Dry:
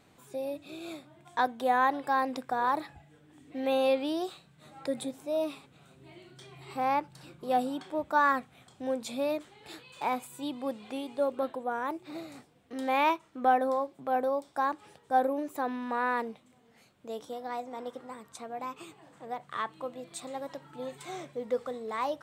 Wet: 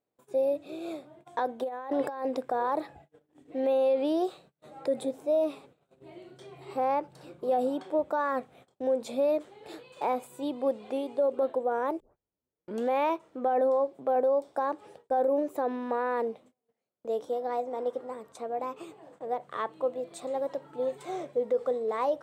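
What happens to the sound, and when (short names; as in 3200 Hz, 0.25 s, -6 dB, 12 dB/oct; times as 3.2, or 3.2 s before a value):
1.63–2.25 negative-ratio compressor -38 dBFS
12 tape start 0.91 s
whole clip: bell 500 Hz +14 dB 1.6 oct; gate -48 dBFS, range -28 dB; limiter -14.5 dBFS; gain -4.5 dB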